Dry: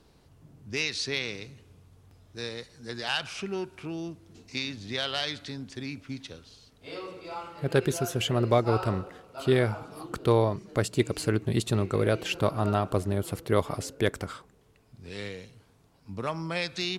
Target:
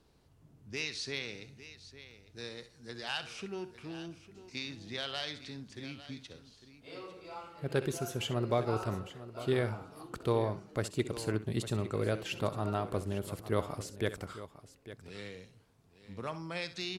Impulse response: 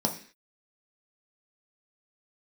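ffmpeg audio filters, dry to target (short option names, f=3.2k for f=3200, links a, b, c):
-filter_complex "[0:a]asettb=1/sr,asplit=3[a][b][c];[a]atrim=end=1.274[d];[b]atrim=start=1.27:end=2.41,asetpts=PTS-STARTPTS,afade=t=in:d=0.004:c=qsin,afade=t=out:st=1.136:d=0.004:c=qsin,asuperstop=centerf=1100:order=4:qfactor=6.3[e];[c]atrim=start=2.406[f];[d][e]acrossfade=d=0.004:c1=hsin:c2=qsin[g];[g][f]acrossfade=d=0.004:c1=qsin:c2=hsin,asplit=2[h][i];[i]aecho=0:1:65|853:0.2|0.188[j];[h][j]amix=inputs=2:normalize=0,volume=-7.5dB"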